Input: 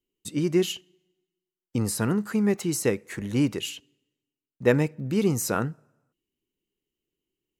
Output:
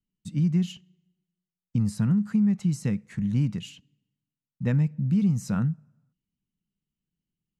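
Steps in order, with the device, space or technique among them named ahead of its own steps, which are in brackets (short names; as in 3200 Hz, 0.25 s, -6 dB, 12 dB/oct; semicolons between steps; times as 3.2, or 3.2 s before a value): jukebox (LPF 7700 Hz 12 dB/oct; resonant low shelf 260 Hz +11.5 dB, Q 3; compressor, threshold -10 dBFS, peak gain reduction 5.5 dB); gain -9 dB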